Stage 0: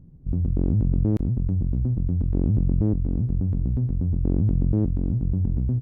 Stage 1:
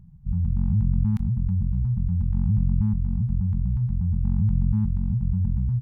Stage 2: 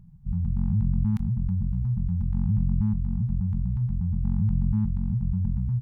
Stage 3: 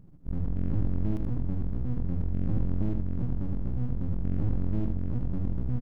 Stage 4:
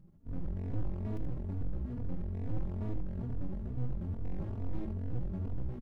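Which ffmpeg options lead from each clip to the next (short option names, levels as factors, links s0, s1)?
-af "afftfilt=real='re*(1-between(b*sr/4096,230,770))':imag='im*(1-between(b*sr/4096,230,770))':win_size=4096:overlap=0.75"
-af "equalizer=f=68:t=o:w=1.3:g=-4.5"
-af "aeval=exprs='max(val(0),0)':c=same,aecho=1:1:78:0.447"
-filter_complex "[0:a]asoftclip=type=hard:threshold=0.075,asplit=2[s0][s1];[s1]adelay=3.4,afreqshift=2.3[s2];[s0][s2]amix=inputs=2:normalize=1,volume=0.75"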